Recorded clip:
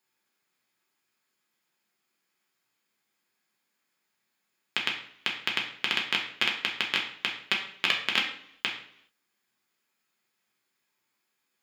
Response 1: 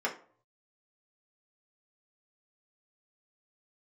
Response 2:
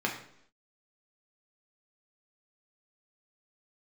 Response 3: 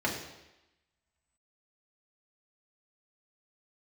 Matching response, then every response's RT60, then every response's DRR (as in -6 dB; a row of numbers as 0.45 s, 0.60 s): 2; no single decay rate, 0.70 s, 0.95 s; -4.0 dB, -1.0 dB, -3.5 dB